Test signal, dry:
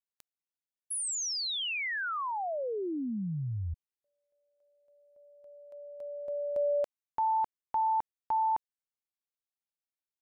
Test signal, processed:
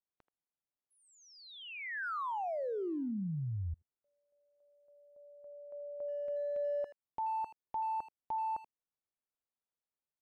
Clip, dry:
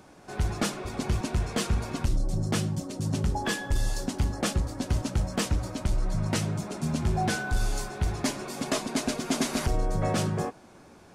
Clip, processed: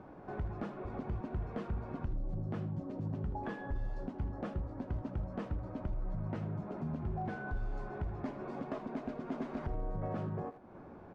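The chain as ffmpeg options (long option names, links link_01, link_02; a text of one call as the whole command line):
ffmpeg -i in.wav -filter_complex "[0:a]lowpass=1200,acompressor=threshold=-37dB:ratio=3:attack=0.14:release=344:knee=1:detection=rms,asplit=2[link_01][link_02];[link_02]adelay=80,highpass=300,lowpass=3400,asoftclip=type=hard:threshold=-39.5dB,volume=-13dB[link_03];[link_01][link_03]amix=inputs=2:normalize=0,volume=1.5dB" out.wav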